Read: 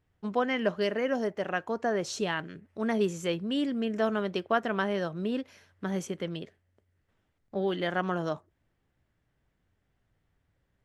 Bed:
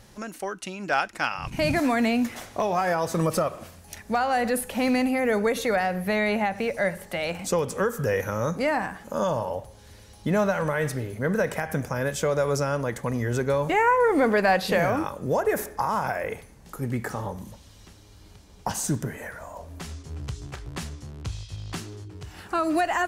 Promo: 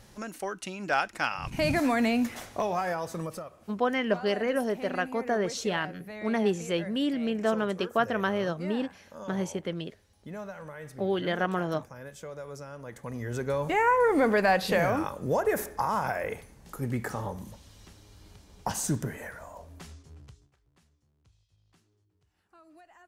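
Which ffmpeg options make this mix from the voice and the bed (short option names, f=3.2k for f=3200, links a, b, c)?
-filter_complex "[0:a]adelay=3450,volume=1dB[a];[1:a]volume=12dB,afade=t=out:st=2.47:d=0.98:silence=0.188365,afade=t=in:st=12.76:d=1.19:silence=0.188365,afade=t=out:st=19.11:d=1.39:silence=0.0334965[b];[a][b]amix=inputs=2:normalize=0"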